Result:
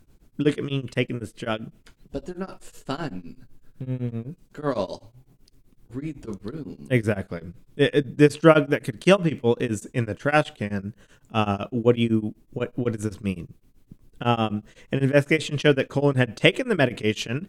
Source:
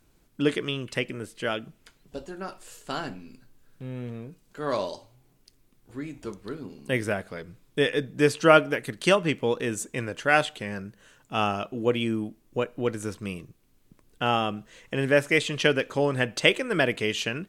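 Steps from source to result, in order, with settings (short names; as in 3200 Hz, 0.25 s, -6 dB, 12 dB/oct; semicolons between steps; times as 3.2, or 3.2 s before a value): low shelf 370 Hz +10.5 dB; beating tremolo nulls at 7.9 Hz; gain +1.5 dB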